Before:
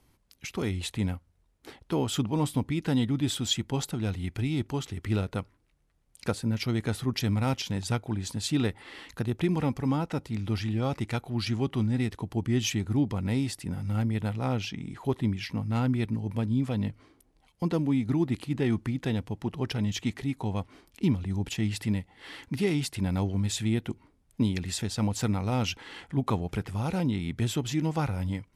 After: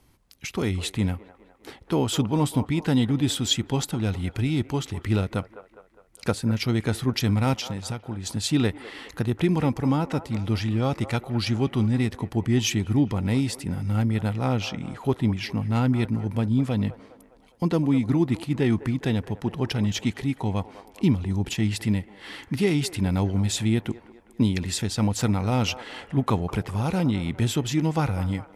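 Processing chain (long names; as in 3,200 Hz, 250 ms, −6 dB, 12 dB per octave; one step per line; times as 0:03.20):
0:07.54–0:08.26: downward compressor 6 to 1, threshold −33 dBFS, peak gain reduction 10 dB
on a send: delay with a band-pass on its return 204 ms, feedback 52%, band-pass 820 Hz, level −12.5 dB
on the sum: level +4.5 dB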